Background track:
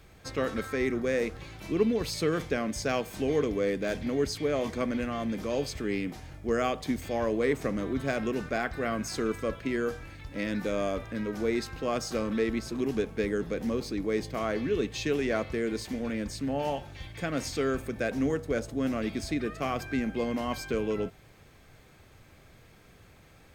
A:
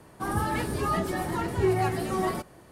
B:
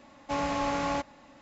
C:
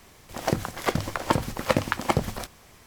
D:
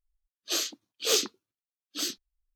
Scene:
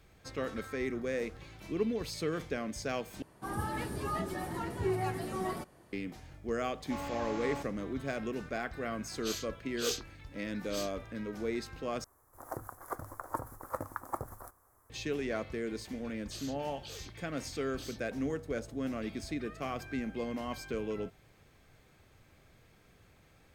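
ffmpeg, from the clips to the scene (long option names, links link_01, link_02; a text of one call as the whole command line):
ffmpeg -i bed.wav -i cue0.wav -i cue1.wav -i cue2.wav -i cue3.wav -filter_complex "[4:a]asplit=2[link_01][link_02];[0:a]volume=-6.5dB[link_03];[3:a]firequalizer=gain_entry='entry(110,0);entry(190,-14);entry(270,-1);entry(540,0);entry(1200,7);entry(1700,-3);entry(2700,-28);entry(4100,-19);entry(6700,-5);entry(11000,7)':delay=0.05:min_phase=1[link_04];[link_02]acompressor=threshold=-39dB:ratio=6:attack=3.2:release=140:knee=1:detection=peak[link_05];[link_03]asplit=3[link_06][link_07][link_08];[link_06]atrim=end=3.224[link_09];[1:a]atrim=end=2.71,asetpts=PTS-STARTPTS,volume=-8dB[link_10];[link_07]atrim=start=5.926:end=12.044[link_11];[link_04]atrim=end=2.86,asetpts=PTS-STARTPTS,volume=-15.5dB[link_12];[link_08]atrim=start=14.896[link_13];[2:a]atrim=end=1.41,asetpts=PTS-STARTPTS,volume=-10.5dB,afade=type=in:duration=0.004:curve=hsin,afade=type=out:start_time=1.406:duration=0.004:curve=hsin,adelay=6610[link_14];[link_01]atrim=end=2.55,asetpts=PTS-STARTPTS,volume=-10.5dB,afade=type=in:duration=0.004:curve=hsin,afade=type=out:start_time=2.546:duration=0.004:curve=hsin,adelay=8750[link_15];[link_05]atrim=end=2.55,asetpts=PTS-STARTPTS,volume=-5.5dB,afade=type=in:duration=0.004:curve=hsin,afade=type=out:start_time=2.546:duration=0.004:curve=hsin,adelay=15830[link_16];[link_09][link_10]acrossfade=duration=0.004:curve1=hsin:curve2=hsin[link_17];[link_17][link_11]acrossfade=duration=0.004:curve1=hsin:curve2=hsin[link_18];[link_18][link_12]acrossfade=duration=0.004:curve1=hsin:curve2=hsin[link_19];[link_19][link_13]acrossfade=duration=0.004:curve1=hsin:curve2=hsin[link_20];[link_20][link_14][link_15][link_16]amix=inputs=4:normalize=0" out.wav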